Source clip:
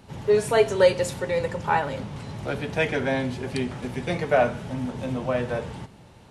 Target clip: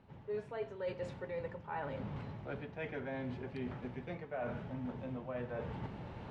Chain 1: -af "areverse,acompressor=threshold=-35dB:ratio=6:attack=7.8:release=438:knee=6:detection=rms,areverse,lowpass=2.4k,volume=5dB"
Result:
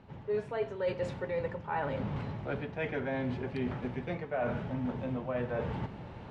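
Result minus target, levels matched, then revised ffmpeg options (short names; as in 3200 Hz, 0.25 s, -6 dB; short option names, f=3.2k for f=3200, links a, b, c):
compressor: peak gain reduction -7 dB
-af "areverse,acompressor=threshold=-43.5dB:ratio=6:attack=7.8:release=438:knee=6:detection=rms,areverse,lowpass=2.4k,volume=5dB"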